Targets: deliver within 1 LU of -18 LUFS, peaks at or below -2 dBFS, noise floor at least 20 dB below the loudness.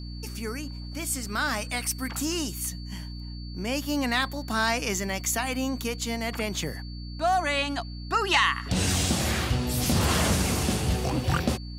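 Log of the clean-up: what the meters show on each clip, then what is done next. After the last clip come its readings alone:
hum 60 Hz; highest harmonic 300 Hz; hum level -35 dBFS; steady tone 4.5 kHz; tone level -46 dBFS; loudness -27.0 LUFS; peak level -7.5 dBFS; loudness target -18.0 LUFS
-> hum notches 60/120/180/240/300 Hz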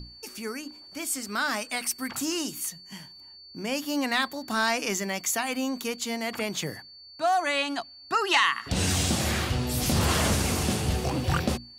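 hum not found; steady tone 4.5 kHz; tone level -46 dBFS
-> band-stop 4.5 kHz, Q 30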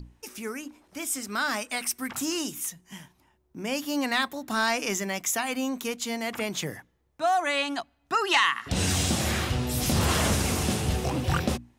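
steady tone not found; loudness -27.5 LUFS; peak level -8.0 dBFS; loudness target -18.0 LUFS
-> trim +9.5 dB; peak limiter -2 dBFS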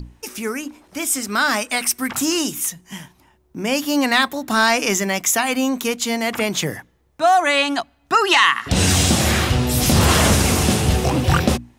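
loudness -18.0 LUFS; peak level -2.0 dBFS; noise floor -59 dBFS

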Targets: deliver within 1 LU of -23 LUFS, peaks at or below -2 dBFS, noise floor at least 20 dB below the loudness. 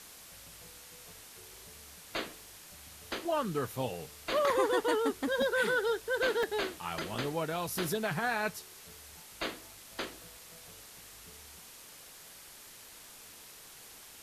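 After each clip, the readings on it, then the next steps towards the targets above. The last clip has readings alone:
dropouts 6; longest dropout 1.8 ms; noise floor -52 dBFS; noise floor target -53 dBFS; loudness -33.0 LUFS; peak level -18.0 dBFS; loudness target -23.0 LUFS
-> interpolate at 3.25/4.50/5.42/6.43/7.15/7.75 s, 1.8 ms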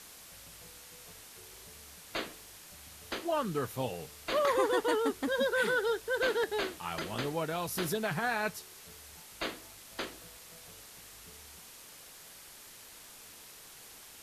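dropouts 0; noise floor -52 dBFS; noise floor target -53 dBFS
-> noise reduction 6 dB, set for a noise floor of -52 dBFS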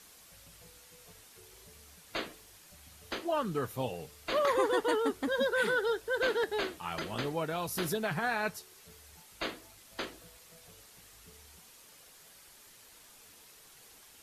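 noise floor -57 dBFS; loudness -33.0 LUFS; peak level -18.0 dBFS; loudness target -23.0 LUFS
-> trim +10 dB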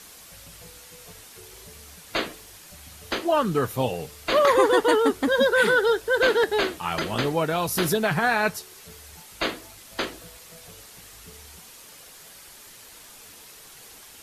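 loudness -23.0 LUFS; peak level -8.0 dBFS; noise floor -47 dBFS

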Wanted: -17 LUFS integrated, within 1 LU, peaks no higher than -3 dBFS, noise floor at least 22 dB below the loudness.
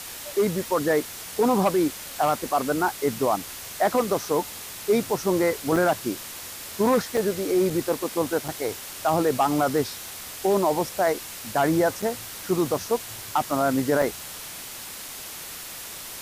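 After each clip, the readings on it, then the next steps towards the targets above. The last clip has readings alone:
dropouts 6; longest dropout 4.1 ms; noise floor -38 dBFS; noise floor target -48 dBFS; loudness -25.5 LUFS; peak level -11.5 dBFS; loudness target -17.0 LUFS
-> interpolate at 5.76/7.17/7.70/8.48/12.02/14.02 s, 4.1 ms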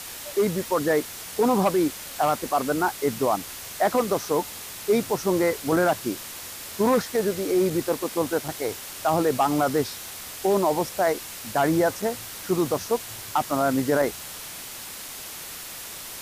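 dropouts 0; noise floor -38 dBFS; noise floor target -48 dBFS
-> noise reduction 10 dB, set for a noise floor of -38 dBFS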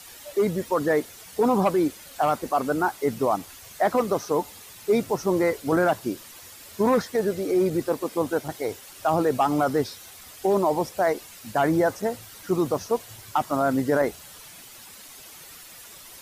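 noise floor -45 dBFS; noise floor target -47 dBFS
-> noise reduction 6 dB, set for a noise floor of -45 dBFS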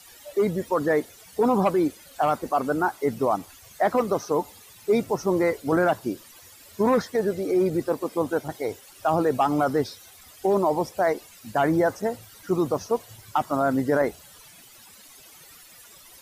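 noise floor -50 dBFS; loudness -25.0 LUFS; peak level -12.0 dBFS; loudness target -17.0 LUFS
-> trim +8 dB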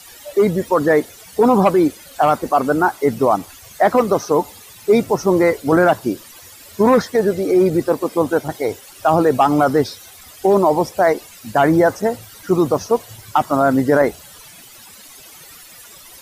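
loudness -17.0 LUFS; peak level -4.0 dBFS; noise floor -42 dBFS

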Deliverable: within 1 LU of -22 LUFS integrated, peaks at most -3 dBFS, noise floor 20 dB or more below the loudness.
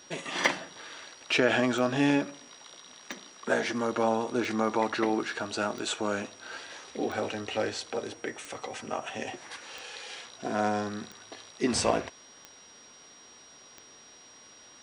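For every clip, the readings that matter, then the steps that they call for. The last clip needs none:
clicks found 11; steady tone 5.7 kHz; tone level -53 dBFS; loudness -30.5 LUFS; peak level -9.0 dBFS; loudness target -22.0 LUFS
-> de-click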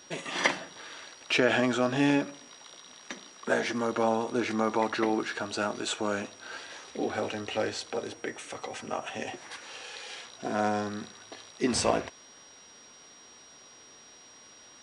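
clicks found 0; steady tone 5.7 kHz; tone level -53 dBFS
-> band-stop 5.7 kHz, Q 30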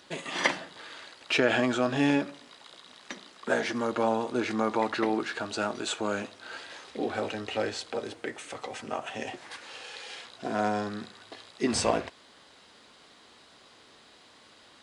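steady tone not found; loudness -30.5 LUFS; peak level -8.5 dBFS; loudness target -22.0 LUFS
-> trim +8.5 dB; peak limiter -3 dBFS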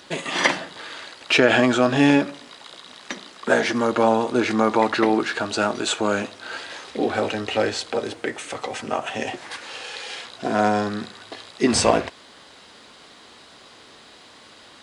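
loudness -22.0 LUFS; peak level -3.0 dBFS; noise floor -48 dBFS

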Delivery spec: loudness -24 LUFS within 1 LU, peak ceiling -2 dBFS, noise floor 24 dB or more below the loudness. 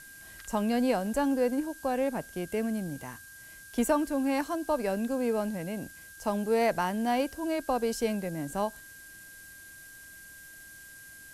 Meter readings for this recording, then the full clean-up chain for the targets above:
steady tone 1.6 kHz; tone level -49 dBFS; noise floor -49 dBFS; noise floor target -55 dBFS; loudness -30.5 LUFS; peak level -15.0 dBFS; loudness target -24.0 LUFS
-> band-stop 1.6 kHz, Q 30; noise reduction 6 dB, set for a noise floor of -49 dBFS; trim +6.5 dB

